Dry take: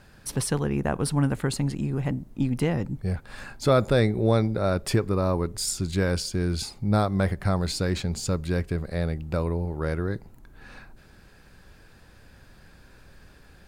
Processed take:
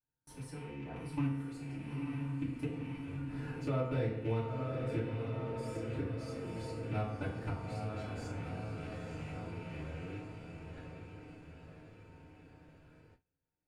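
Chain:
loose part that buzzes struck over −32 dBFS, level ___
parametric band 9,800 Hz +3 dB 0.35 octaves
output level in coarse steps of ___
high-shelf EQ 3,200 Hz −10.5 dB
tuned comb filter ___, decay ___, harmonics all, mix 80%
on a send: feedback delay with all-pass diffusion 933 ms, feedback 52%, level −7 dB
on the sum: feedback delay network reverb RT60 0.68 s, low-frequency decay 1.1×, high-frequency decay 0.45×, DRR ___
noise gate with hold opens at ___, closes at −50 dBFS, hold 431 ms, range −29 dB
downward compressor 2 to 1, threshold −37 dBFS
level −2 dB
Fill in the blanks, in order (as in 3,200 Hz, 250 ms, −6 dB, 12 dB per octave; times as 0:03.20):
−19 dBFS, 21 dB, 130 Hz, 0.53 s, −10 dB, −47 dBFS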